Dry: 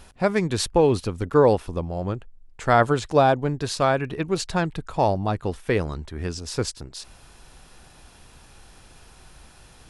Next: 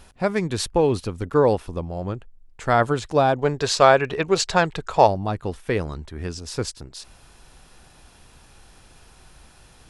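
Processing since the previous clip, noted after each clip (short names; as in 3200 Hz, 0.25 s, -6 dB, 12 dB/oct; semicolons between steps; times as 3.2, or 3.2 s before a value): spectral gain 3.39–5.07, 370–8200 Hz +8 dB; gain -1 dB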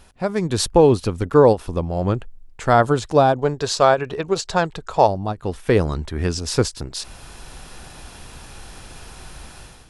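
dynamic EQ 2200 Hz, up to -6 dB, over -40 dBFS, Q 1.4; AGC gain up to 12 dB; ending taper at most 340 dB/s; gain -1 dB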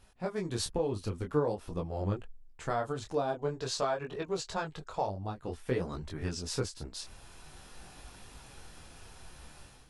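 compressor 3:1, threshold -17 dBFS, peak gain reduction 7.5 dB; detuned doubles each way 17 cents; gain -8 dB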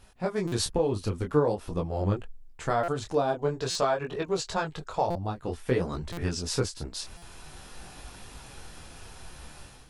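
stuck buffer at 0.47/2.83/3.7/5.1/6.12/7.17, samples 256, times 8; gain +5.5 dB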